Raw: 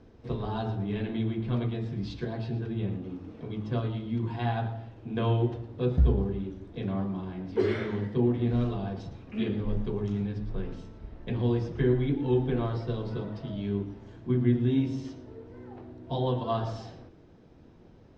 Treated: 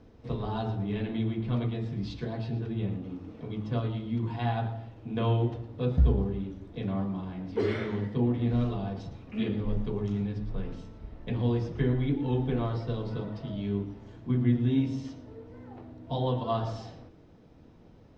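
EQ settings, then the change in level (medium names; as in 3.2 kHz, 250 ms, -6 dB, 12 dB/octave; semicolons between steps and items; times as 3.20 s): band-stop 370 Hz, Q 12; band-stop 1.6 kHz, Q 20; 0.0 dB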